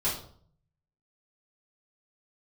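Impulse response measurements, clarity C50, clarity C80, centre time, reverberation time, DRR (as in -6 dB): 6.0 dB, 10.5 dB, 33 ms, 0.55 s, -10.5 dB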